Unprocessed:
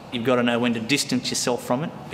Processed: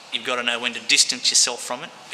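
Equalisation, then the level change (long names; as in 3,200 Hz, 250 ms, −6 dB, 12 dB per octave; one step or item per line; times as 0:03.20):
meter weighting curve ITU-R 468
−2.0 dB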